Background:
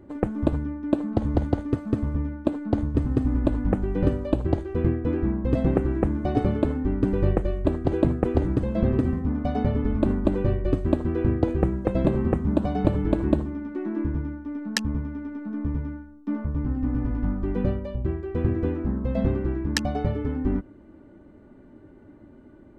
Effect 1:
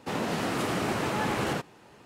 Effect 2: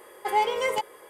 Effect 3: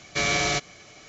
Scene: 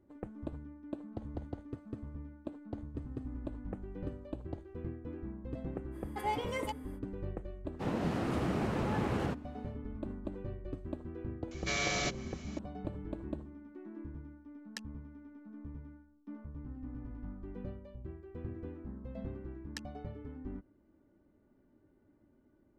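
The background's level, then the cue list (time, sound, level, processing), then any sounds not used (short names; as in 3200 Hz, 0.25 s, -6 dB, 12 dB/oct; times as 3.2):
background -18.5 dB
5.91 add 2 -11.5 dB, fades 0.05 s
7.73 add 1 -8 dB, fades 0.10 s + tilt -2.5 dB/oct
11.51 add 3 -9.5 dB + upward compressor 1.5:1, threshold -32 dBFS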